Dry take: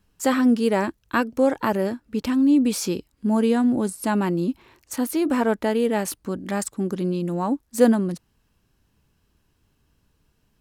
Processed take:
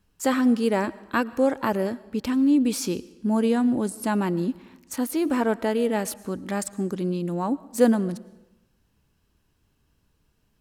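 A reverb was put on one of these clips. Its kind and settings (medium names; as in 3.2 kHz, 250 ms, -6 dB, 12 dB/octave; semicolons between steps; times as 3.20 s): algorithmic reverb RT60 1 s, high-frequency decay 0.9×, pre-delay 70 ms, DRR 19.5 dB; trim -2 dB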